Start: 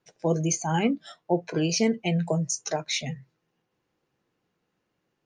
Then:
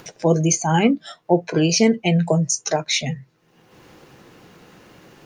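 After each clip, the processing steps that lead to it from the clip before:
upward compression, threshold −36 dBFS
level +7.5 dB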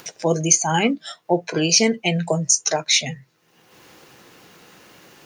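spectral tilt +2 dB per octave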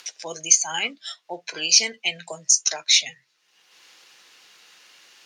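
resonant band-pass 4,200 Hz, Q 0.83
level +2 dB

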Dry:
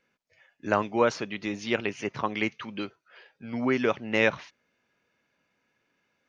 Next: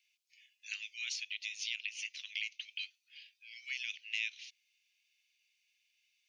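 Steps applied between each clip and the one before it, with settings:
Butterworth high-pass 2,400 Hz 48 dB per octave
downward compressor 2.5 to 1, threshold −42 dBFS, peak gain reduction 11 dB
level +4.5 dB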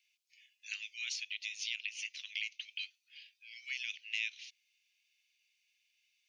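no processing that can be heard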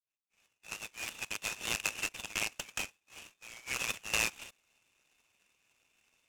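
fade in at the beginning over 1.67 s
Chebyshev low-pass with heavy ripple 3,700 Hz, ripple 9 dB
short delay modulated by noise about 3,700 Hz, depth 0.049 ms
level +8.5 dB

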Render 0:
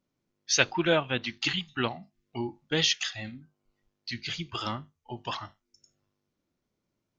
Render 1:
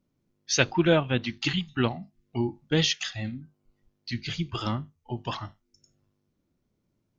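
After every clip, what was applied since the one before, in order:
low-shelf EQ 380 Hz +10.5 dB
level −1 dB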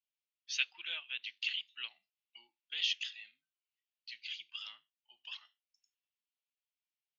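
four-pole ladder band-pass 3,200 Hz, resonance 55%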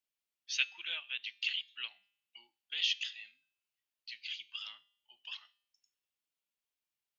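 tuned comb filter 200 Hz, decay 0.64 s, harmonics all, mix 40%
level +5.5 dB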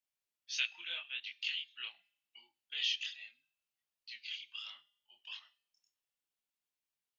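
multi-voice chorus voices 2, 0.77 Hz, delay 25 ms, depth 4.5 ms
level +1 dB

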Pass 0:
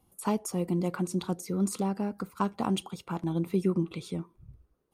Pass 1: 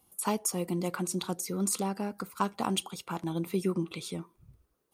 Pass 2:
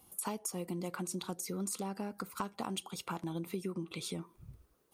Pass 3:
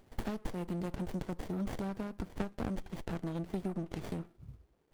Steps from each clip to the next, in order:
spectral tilt +2 dB per octave; level +1 dB
downward compressor 4 to 1, threshold −42 dBFS, peak gain reduction 15.5 dB; level +4.5 dB
windowed peak hold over 33 samples; level +2 dB

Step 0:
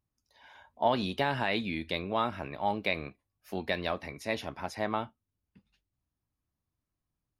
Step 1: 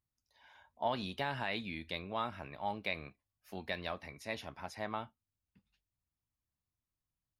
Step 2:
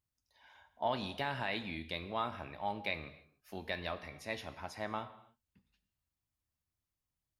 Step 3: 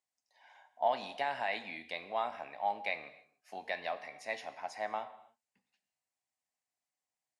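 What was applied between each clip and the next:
parametric band 350 Hz −4.5 dB 1.6 octaves; level −6 dB
reverb whose tail is shaped and stops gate 330 ms falling, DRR 10.5 dB
loudspeaker in its box 360–9,700 Hz, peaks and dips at 360 Hz −7 dB, 740 Hz +9 dB, 1,300 Hz −5 dB, 2,000 Hz +4 dB, 3,500 Hz −5 dB, 7,600 Hz +4 dB

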